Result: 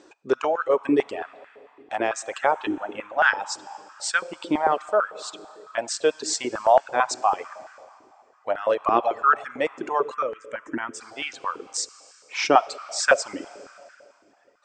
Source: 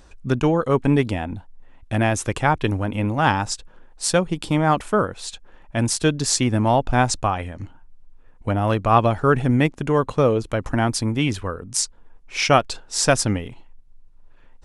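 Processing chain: algorithmic reverb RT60 2.6 s, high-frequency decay 0.95×, pre-delay 10 ms, DRR 7.5 dB; reverb removal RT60 1.9 s; in parallel at -2 dB: compression, threshold -33 dBFS, peak gain reduction 21 dB; on the sum: Chebyshev low-pass 8.4 kHz, order 8; 10.14–11.01 s: static phaser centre 1.8 kHz, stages 4; step-sequenced high-pass 9 Hz 340–1500 Hz; trim -6 dB

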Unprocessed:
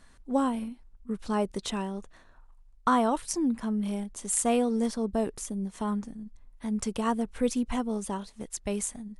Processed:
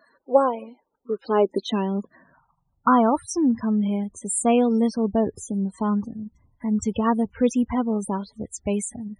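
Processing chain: loudest bins only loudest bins 32; high-pass sweep 500 Hz -> 88 Hz, 0.89–3.17 s; trim +6 dB

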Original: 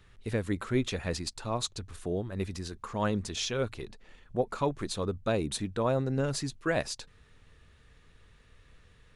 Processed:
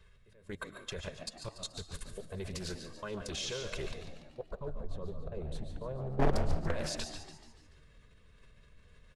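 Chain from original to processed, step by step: 4.44–6.67 s: tilt EQ -4 dB/octave; comb 1.9 ms, depth 81%; dynamic bell 140 Hz, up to -4 dB, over -32 dBFS, Q 1.1; slow attack 723 ms; level held to a coarse grid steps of 22 dB; hard clipper -29 dBFS, distortion -5 dB; flange 1.7 Hz, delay 4.4 ms, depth 1 ms, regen -50%; frequency-shifting echo 144 ms, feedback 50%, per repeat +72 Hz, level -10 dB; reverberation RT60 0.45 s, pre-delay 90 ms, DRR 8.5 dB; loudspeaker Doppler distortion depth 0.7 ms; trim +10 dB

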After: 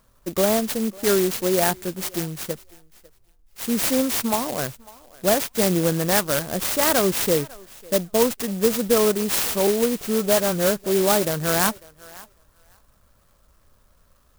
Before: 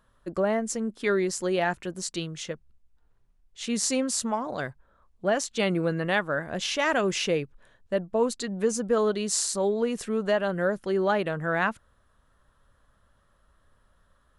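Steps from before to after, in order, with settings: 9.67–11.25 s: phase dispersion highs, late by 42 ms, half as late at 1.9 kHz; on a send: thinning echo 549 ms, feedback 17%, high-pass 490 Hz, level -20.5 dB; on the sum: sampling jitter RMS 0.12 ms; trim +5.5 dB

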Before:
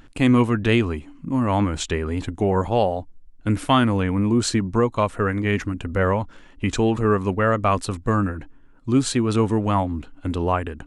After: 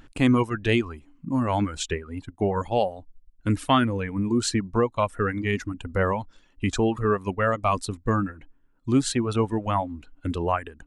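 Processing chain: reverb removal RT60 1.5 s; 1.94–2.61 s: upward expansion 1.5:1, over -37 dBFS; trim -2 dB

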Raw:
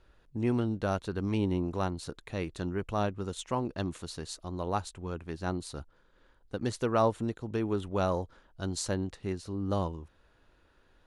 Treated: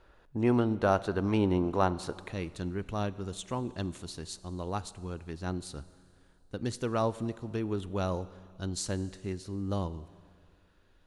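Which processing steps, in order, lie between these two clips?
peaking EQ 840 Hz +7 dB 2.6 oct, from 2.32 s -4.5 dB; Schroeder reverb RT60 2.2 s, combs from 33 ms, DRR 17 dB

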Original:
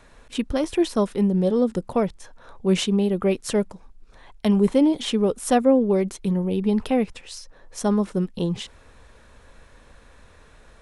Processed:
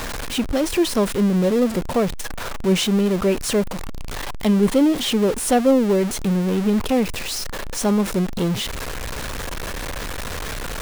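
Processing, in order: jump at every zero crossing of -22.5 dBFS

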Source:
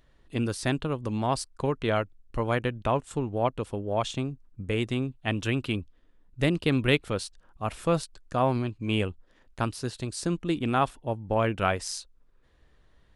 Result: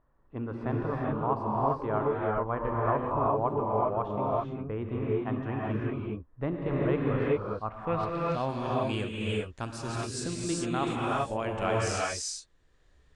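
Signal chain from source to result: low-pass sweep 1.1 kHz -> 7.6 kHz, 7.66–8.51 s; gated-style reverb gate 430 ms rising, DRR -4.5 dB; trim -8 dB

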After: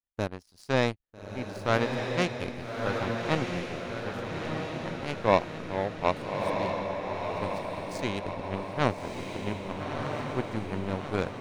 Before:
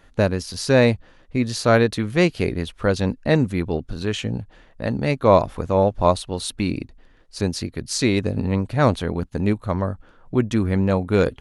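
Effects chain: power-law waveshaper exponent 2; echo that smears into a reverb 1286 ms, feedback 56%, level -3 dB; trim -3.5 dB

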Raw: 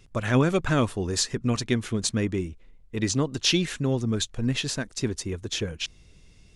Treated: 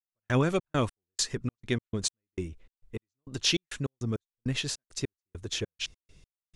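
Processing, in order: peaking EQ 230 Hz -3.5 dB 0.74 oct; trance gate "..xx.x..xx.x.x" 101 bpm -60 dB; trim -3 dB

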